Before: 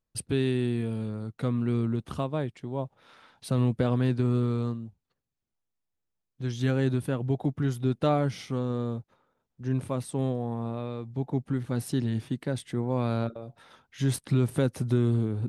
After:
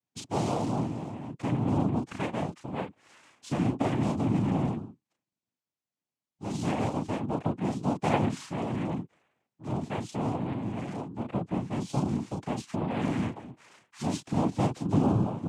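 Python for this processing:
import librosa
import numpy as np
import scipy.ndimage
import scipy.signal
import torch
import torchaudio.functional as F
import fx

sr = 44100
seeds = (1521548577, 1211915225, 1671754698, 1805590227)

y = fx.doubler(x, sr, ms=34.0, db=-4)
y = fx.noise_vocoder(y, sr, seeds[0], bands=4)
y = y * librosa.db_to_amplitude(-3.0)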